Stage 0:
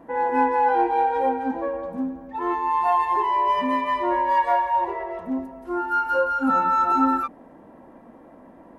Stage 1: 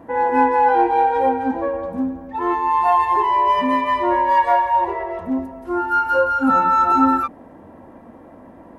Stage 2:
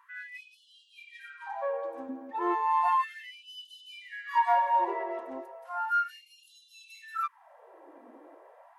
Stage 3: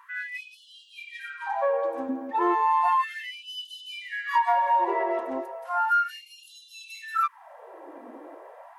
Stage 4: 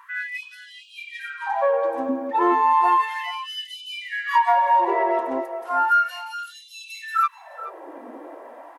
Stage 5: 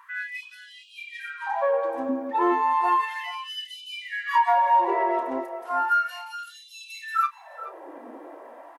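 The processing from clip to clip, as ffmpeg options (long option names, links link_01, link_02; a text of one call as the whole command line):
ffmpeg -i in.wav -af "equalizer=frequency=90:width=2.7:gain=11.5,volume=4.5dB" out.wav
ffmpeg -i in.wav -af "afftfilt=real='re*gte(b*sr/1024,250*pow(2800/250,0.5+0.5*sin(2*PI*0.34*pts/sr)))':imag='im*gte(b*sr/1024,250*pow(2800/250,0.5+0.5*sin(2*PI*0.34*pts/sr)))':win_size=1024:overlap=0.75,volume=-8dB" out.wav
ffmpeg -i in.wav -af "acompressor=threshold=-28dB:ratio=5,volume=8.5dB" out.wav
ffmpeg -i in.wav -filter_complex "[0:a]asplit=2[link_01][link_02];[link_02]adelay=425.7,volume=-14dB,highshelf=frequency=4000:gain=-9.58[link_03];[link_01][link_03]amix=inputs=2:normalize=0,volume=4.5dB" out.wav
ffmpeg -i in.wav -filter_complex "[0:a]asplit=2[link_01][link_02];[link_02]adelay=31,volume=-12dB[link_03];[link_01][link_03]amix=inputs=2:normalize=0,volume=-3dB" out.wav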